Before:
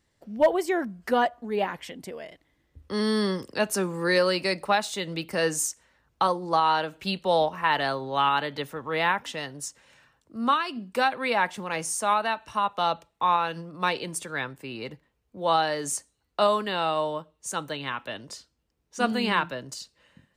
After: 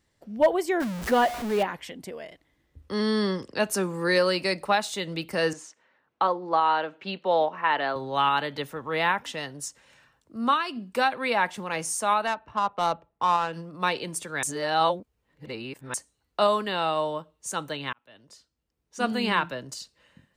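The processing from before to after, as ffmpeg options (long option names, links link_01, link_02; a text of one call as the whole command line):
ffmpeg -i in.wav -filter_complex "[0:a]asettb=1/sr,asplit=3[link_01][link_02][link_03];[link_01]atrim=end=0.804[link_04];[link_02]atrim=start=0.8:end=1.63,asetpts=PTS-STARTPTS,afade=type=in:duration=0.004:curve=qsin,afade=type=out:start_time=0.826:duration=0.004:curve=qsin,aeval=exprs='val(0)+0.5*0.0355*sgn(val(0))':channel_layout=same[link_05];[link_03]atrim=start=1.626[link_06];[link_04][link_05]acrossfade=duration=0.004:curve1=hsin:curve2=qsin[link_07];[link_07][link_06]acrossfade=duration=0.004:curve1=qsin:curve2=hsin,asettb=1/sr,asplit=3[link_08][link_09][link_10];[link_08]atrim=end=2.944[link_11];[link_09]atrim=start=2.94:end=3.58,asetpts=PTS-STARTPTS,afade=type=in:duration=0.004:curve=qsin,afade=type=out:start_time=0.636:duration=0.004:curve=qsin,lowpass=6400[link_12];[link_10]atrim=start=3.576[link_13];[link_11][link_12]acrossfade=duration=0.004:curve1=hsin:curve2=qsin[link_14];[link_14][link_13]acrossfade=duration=0.004:curve1=qsin:curve2=hsin,asettb=1/sr,asplit=3[link_15][link_16][link_17];[link_15]atrim=end=5.534[link_18];[link_16]atrim=start=5.53:end=7.96,asetpts=PTS-STARTPTS,afade=type=in:duration=0.004:curve=qsin,afade=type=out:start_time=2.426:duration=0.004:curve=qsin,highpass=250,lowpass=2800[link_19];[link_17]atrim=start=7.956[link_20];[link_18][link_19]acrossfade=duration=0.004:curve1=hsin:curve2=qsin[link_21];[link_21][link_20]acrossfade=duration=0.004:curve1=qsin:curve2=hsin,asettb=1/sr,asplit=3[link_22][link_23][link_24];[link_22]atrim=end=12.274[link_25];[link_23]atrim=start=12.27:end=13.53,asetpts=PTS-STARTPTS,afade=type=in:duration=0.004:curve=qsin,afade=type=out:start_time=1.256:duration=0.004:curve=qsin,adynamicsmooth=sensitivity=2:basefreq=1400[link_26];[link_24]atrim=start=13.526[link_27];[link_25][link_26]acrossfade=duration=0.004:curve1=hsin:curve2=qsin[link_28];[link_28][link_27]acrossfade=duration=0.004:curve1=qsin:curve2=hsin,asplit=4[link_29][link_30][link_31][link_32];[link_29]atrim=end=14.432[link_33];[link_30]atrim=start=14.428:end=15.942,asetpts=PTS-STARTPTS,areverse[link_34];[link_31]atrim=start=15.938:end=17.93,asetpts=PTS-STARTPTS,afade=type=out:start_time=1.988:duration=0.004:curve=hsin[link_35];[link_32]atrim=start=17.93,asetpts=PTS-STARTPTS,afade=type=in:duration=1.36[link_36];[link_33][link_34]acrossfade=duration=0.004:curve1=hsin:curve2=hsin[link_37];[link_35][link_36]concat=n=2:v=0:a=1[link_38];[link_37][link_38]acrossfade=duration=0.004:curve1=hsin:curve2=hsin" out.wav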